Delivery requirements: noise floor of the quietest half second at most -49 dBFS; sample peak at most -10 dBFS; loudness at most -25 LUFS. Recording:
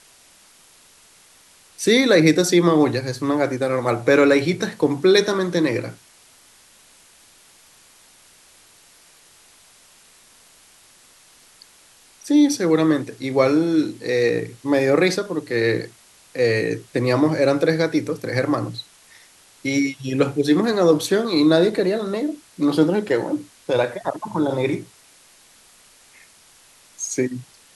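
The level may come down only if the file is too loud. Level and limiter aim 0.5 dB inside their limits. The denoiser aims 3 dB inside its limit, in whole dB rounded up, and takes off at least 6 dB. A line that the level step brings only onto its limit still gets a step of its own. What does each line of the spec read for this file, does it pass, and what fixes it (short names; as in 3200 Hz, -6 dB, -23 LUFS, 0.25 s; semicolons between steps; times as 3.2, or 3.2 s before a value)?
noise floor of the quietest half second -52 dBFS: OK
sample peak -3.0 dBFS: fail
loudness -20.0 LUFS: fail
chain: gain -5.5 dB; limiter -10.5 dBFS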